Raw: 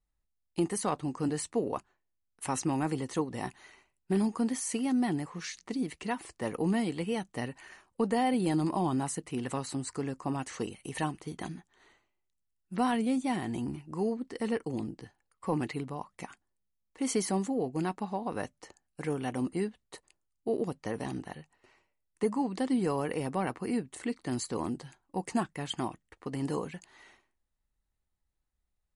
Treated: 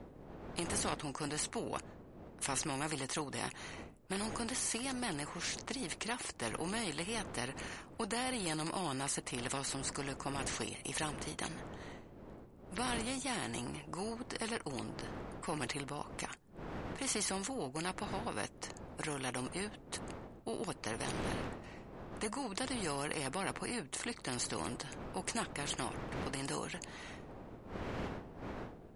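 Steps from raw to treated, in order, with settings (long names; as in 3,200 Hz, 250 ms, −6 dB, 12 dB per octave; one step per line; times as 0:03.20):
wind on the microphone 310 Hz −44 dBFS
every bin compressed towards the loudest bin 2 to 1
level −2.5 dB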